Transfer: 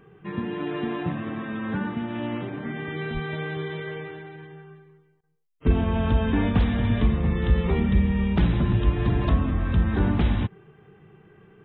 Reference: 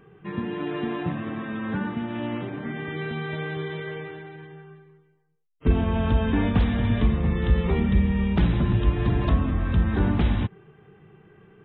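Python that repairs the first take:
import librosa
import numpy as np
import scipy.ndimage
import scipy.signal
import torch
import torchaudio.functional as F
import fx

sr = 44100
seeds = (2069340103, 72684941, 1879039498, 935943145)

y = fx.highpass(x, sr, hz=140.0, slope=24, at=(3.13, 3.25), fade=0.02)
y = fx.fix_interpolate(y, sr, at_s=(5.21,), length_ms=23.0)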